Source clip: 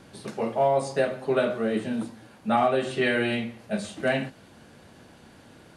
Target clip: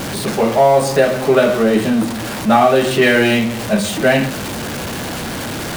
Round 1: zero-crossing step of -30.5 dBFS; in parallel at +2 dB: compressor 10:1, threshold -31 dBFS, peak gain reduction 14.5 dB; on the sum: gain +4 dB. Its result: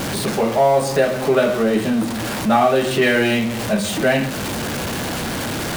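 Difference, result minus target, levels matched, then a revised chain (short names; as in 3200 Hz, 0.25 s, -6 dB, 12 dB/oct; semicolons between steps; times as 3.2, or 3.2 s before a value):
compressor: peak gain reduction +11 dB
zero-crossing step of -30.5 dBFS; in parallel at +2 dB: compressor 10:1, threshold -19 dBFS, peak gain reduction 3.5 dB; on the sum: gain +4 dB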